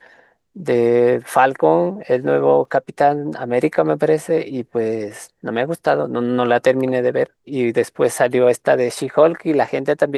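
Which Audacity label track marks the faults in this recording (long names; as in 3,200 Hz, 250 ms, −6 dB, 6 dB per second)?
2.650000	2.650000	drop-out 2.8 ms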